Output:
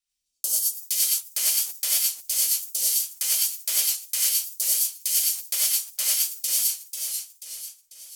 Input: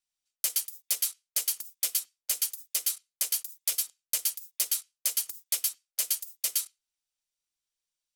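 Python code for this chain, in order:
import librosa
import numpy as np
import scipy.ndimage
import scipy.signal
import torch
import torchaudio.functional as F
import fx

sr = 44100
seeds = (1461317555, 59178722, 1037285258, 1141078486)

y = fx.phaser_stages(x, sr, stages=2, low_hz=110.0, high_hz=2000.0, hz=0.48, feedback_pct=25)
y = fx.rev_gated(y, sr, seeds[0], gate_ms=120, shape='rising', drr_db=-5.0)
y = fx.echo_warbled(y, sr, ms=490, feedback_pct=47, rate_hz=2.8, cents=115, wet_db=-6)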